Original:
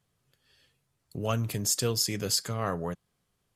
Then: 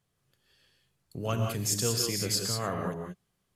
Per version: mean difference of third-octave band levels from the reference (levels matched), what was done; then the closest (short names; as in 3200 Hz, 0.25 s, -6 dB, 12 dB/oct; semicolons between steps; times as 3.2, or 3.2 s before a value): 5.5 dB: non-linear reverb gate 0.21 s rising, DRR 2 dB; gain -2.5 dB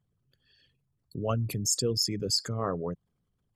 8.5 dB: formant sharpening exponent 2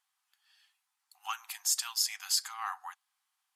15.5 dB: brick-wall FIR high-pass 730 Hz; gain -1.5 dB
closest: first